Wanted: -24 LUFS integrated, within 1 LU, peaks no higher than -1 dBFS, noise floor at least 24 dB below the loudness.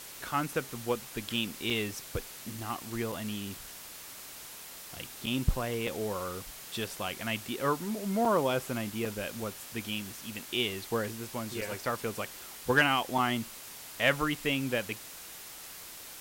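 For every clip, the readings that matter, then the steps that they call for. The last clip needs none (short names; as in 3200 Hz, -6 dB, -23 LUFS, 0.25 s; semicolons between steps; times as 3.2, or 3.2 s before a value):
dropouts 8; longest dropout 4.4 ms; noise floor -46 dBFS; noise floor target -57 dBFS; loudness -33.0 LUFS; peak -12.5 dBFS; loudness target -24.0 LUFS
-> interpolate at 1.7/3.12/5.26/5.87/8.25/9.05/11.61/13.18, 4.4 ms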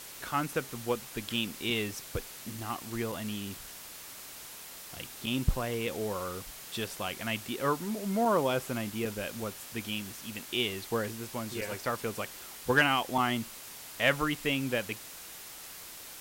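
dropouts 0; noise floor -46 dBFS; noise floor target -57 dBFS
-> denoiser 11 dB, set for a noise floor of -46 dBFS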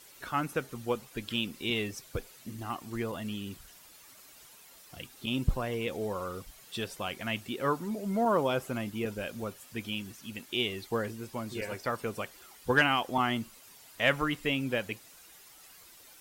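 noise floor -55 dBFS; noise floor target -57 dBFS
-> denoiser 6 dB, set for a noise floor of -55 dBFS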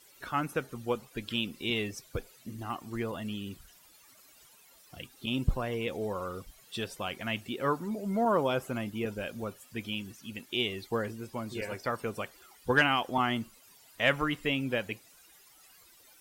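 noise floor -59 dBFS; loudness -33.0 LUFS; peak -12.5 dBFS; loudness target -24.0 LUFS
-> gain +9 dB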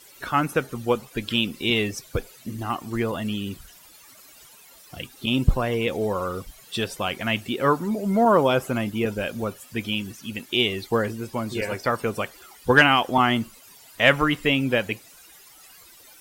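loudness -24.0 LUFS; peak -3.5 dBFS; noise floor -50 dBFS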